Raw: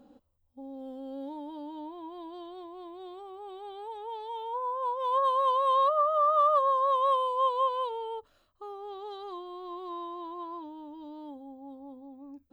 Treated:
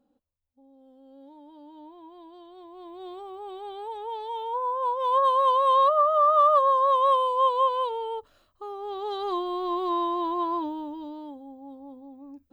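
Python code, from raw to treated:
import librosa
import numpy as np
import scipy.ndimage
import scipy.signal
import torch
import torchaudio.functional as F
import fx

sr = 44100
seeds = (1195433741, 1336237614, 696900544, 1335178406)

y = fx.gain(x, sr, db=fx.line((0.86, -13.5), (1.92, -5.0), (2.47, -5.0), (3.09, 4.5), (8.7, 4.5), (9.34, 12.0), (10.65, 12.0), (11.36, 2.0)))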